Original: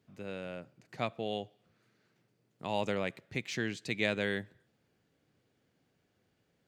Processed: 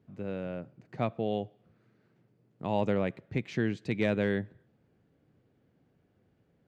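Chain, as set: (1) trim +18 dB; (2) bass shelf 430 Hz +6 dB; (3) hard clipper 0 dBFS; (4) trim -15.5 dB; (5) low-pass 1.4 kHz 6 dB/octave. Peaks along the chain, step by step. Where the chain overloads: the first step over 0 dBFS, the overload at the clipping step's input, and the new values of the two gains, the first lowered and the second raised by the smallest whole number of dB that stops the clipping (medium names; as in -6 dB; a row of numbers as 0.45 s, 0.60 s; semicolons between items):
+2.5 dBFS, +4.0 dBFS, 0.0 dBFS, -15.5 dBFS, -16.0 dBFS; step 1, 4.0 dB; step 1 +14 dB, step 4 -11.5 dB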